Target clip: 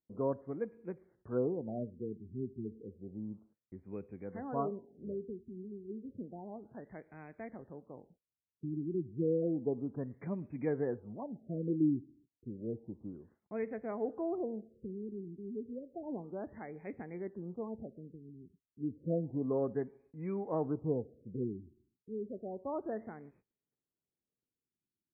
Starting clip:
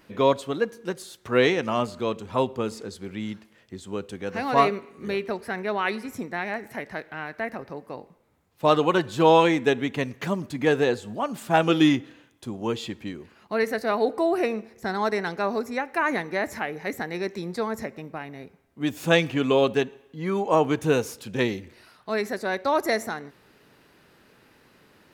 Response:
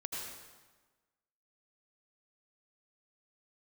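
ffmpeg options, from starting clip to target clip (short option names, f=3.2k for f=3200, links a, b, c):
-af "agate=range=-28dB:threshold=-52dB:ratio=16:detection=peak,equalizer=f=1.5k:w=0.56:g=-14,afftfilt=real='re*lt(b*sr/1024,390*pow(2600/390,0.5+0.5*sin(2*PI*0.31*pts/sr)))':imag='im*lt(b*sr/1024,390*pow(2600/390,0.5+0.5*sin(2*PI*0.31*pts/sr)))':win_size=1024:overlap=0.75,volume=-8.5dB"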